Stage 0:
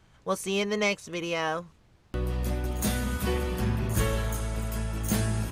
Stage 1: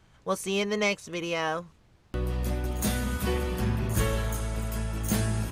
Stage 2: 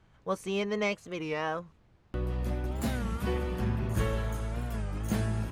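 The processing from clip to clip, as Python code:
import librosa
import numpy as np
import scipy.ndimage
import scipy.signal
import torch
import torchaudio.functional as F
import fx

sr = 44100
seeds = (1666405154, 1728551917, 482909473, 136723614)

y1 = x
y2 = fx.high_shelf(y1, sr, hz=4000.0, db=-11.0)
y2 = fx.record_warp(y2, sr, rpm=33.33, depth_cents=160.0)
y2 = F.gain(torch.from_numpy(y2), -2.5).numpy()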